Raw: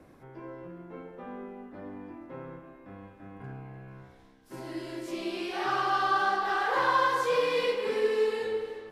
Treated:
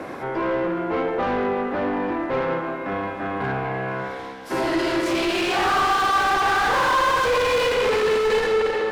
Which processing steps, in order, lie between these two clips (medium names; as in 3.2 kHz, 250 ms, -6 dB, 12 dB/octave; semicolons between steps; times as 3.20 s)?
overdrive pedal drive 35 dB, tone 2.2 kHz, clips at -13.5 dBFS; Schroeder reverb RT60 2.4 s, combs from 32 ms, DRR 9 dB